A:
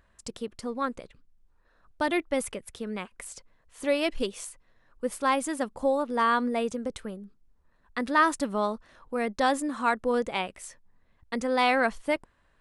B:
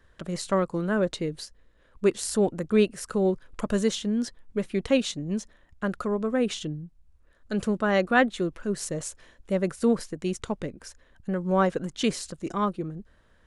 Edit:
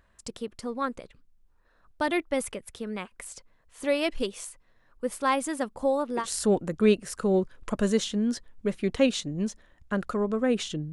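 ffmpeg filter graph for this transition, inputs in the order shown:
ffmpeg -i cue0.wav -i cue1.wav -filter_complex "[0:a]apad=whole_dur=10.92,atrim=end=10.92,atrim=end=6.26,asetpts=PTS-STARTPTS[link_01];[1:a]atrim=start=2.07:end=6.83,asetpts=PTS-STARTPTS[link_02];[link_01][link_02]acrossfade=duration=0.1:curve1=tri:curve2=tri" out.wav

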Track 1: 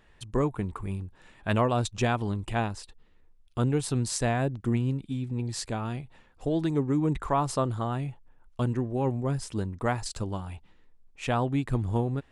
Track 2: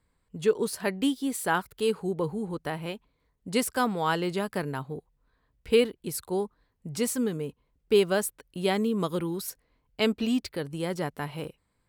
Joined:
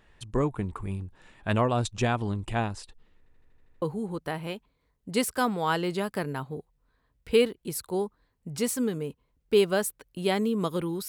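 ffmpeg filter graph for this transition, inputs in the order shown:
ffmpeg -i cue0.wav -i cue1.wav -filter_complex "[0:a]apad=whole_dur=11.08,atrim=end=11.08,asplit=8[link_01][link_02][link_03][link_04][link_05][link_06][link_07][link_08];[link_01]atrim=end=3.262[link_09];[link_02]atrim=start=3.178:end=3.262[link_10];[link_03]atrim=start=3.178:end=3.262[link_11];[link_04]atrim=start=3.178:end=3.262[link_12];[link_05]atrim=start=3.178:end=3.262[link_13];[link_06]atrim=start=3.178:end=3.262[link_14];[link_07]atrim=start=3.178:end=3.262[link_15];[link_08]atrim=start=3.178:end=3.262[link_16];[1:a]atrim=start=2.208:end=9.47[link_17];[link_09][link_10]acrossfade=duration=0.004:curve1=hsin:curve2=hsin[link_18];[link_18][link_11]acrossfade=duration=0.004:curve1=hsin:curve2=hsin[link_19];[link_19][link_12]acrossfade=duration=0.004:curve1=hsin:curve2=hsin[link_20];[link_20][link_13]acrossfade=duration=0.004:curve1=hsin:curve2=hsin[link_21];[link_21][link_14]acrossfade=duration=0.004:curve1=hsin:curve2=hsin[link_22];[link_22][link_15]acrossfade=duration=0.004:curve1=hsin:curve2=hsin[link_23];[link_23][link_16]acrossfade=duration=0.004:curve1=hsin:curve2=hsin[link_24];[link_24][link_17]acrossfade=duration=0.004:curve1=hsin:curve2=hsin" out.wav

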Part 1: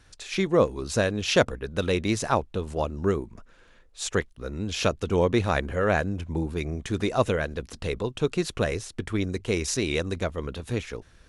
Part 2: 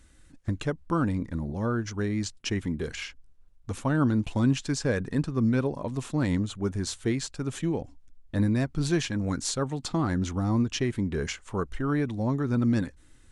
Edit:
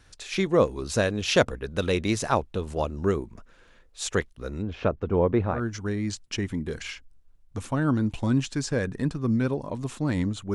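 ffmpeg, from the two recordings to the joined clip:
ffmpeg -i cue0.wav -i cue1.wav -filter_complex "[0:a]asplit=3[link_01][link_02][link_03];[link_01]afade=type=out:start_time=4.61:duration=0.02[link_04];[link_02]lowpass=1400,afade=type=in:start_time=4.61:duration=0.02,afade=type=out:start_time=5.63:duration=0.02[link_05];[link_03]afade=type=in:start_time=5.63:duration=0.02[link_06];[link_04][link_05][link_06]amix=inputs=3:normalize=0,apad=whole_dur=10.54,atrim=end=10.54,atrim=end=5.63,asetpts=PTS-STARTPTS[link_07];[1:a]atrim=start=1.6:end=6.67,asetpts=PTS-STARTPTS[link_08];[link_07][link_08]acrossfade=duration=0.16:curve1=tri:curve2=tri" out.wav

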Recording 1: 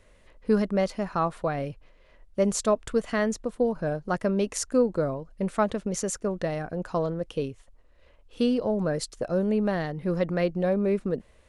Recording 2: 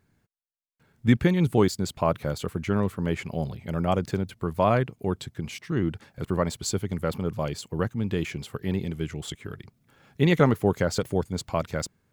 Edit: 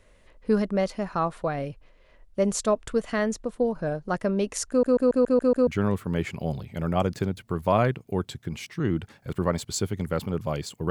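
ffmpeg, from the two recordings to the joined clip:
ffmpeg -i cue0.wav -i cue1.wav -filter_complex "[0:a]apad=whole_dur=10.9,atrim=end=10.9,asplit=7[link_01][link_02][link_03][link_04][link_05][link_06][link_07];[link_01]atrim=end=4.832[link_08];[link_02]atrim=start=4.688:end=4.832[link_09];[link_03]atrim=start=4.688:end=4.832[link_10];[link_04]atrim=start=4.688:end=4.832[link_11];[link_05]atrim=start=4.688:end=4.832[link_12];[link_06]atrim=start=4.688:end=4.832[link_13];[link_07]atrim=start=4.688:end=4.832[link_14];[1:a]atrim=start=2.588:end=7.82[link_15];[link_08][link_09]acrossfade=duration=0.004:curve1=hsin:curve2=hsin[link_16];[link_16][link_10]acrossfade=duration=0.004:curve1=hsin:curve2=hsin[link_17];[link_17][link_11]acrossfade=duration=0.004:curve1=hsin:curve2=hsin[link_18];[link_18][link_12]acrossfade=duration=0.004:curve1=hsin:curve2=hsin[link_19];[link_19][link_13]acrossfade=duration=0.004:curve1=hsin:curve2=hsin[link_20];[link_20][link_14]acrossfade=duration=0.004:curve1=hsin:curve2=hsin[link_21];[link_21][link_15]acrossfade=duration=0.004:curve1=hsin:curve2=hsin" out.wav

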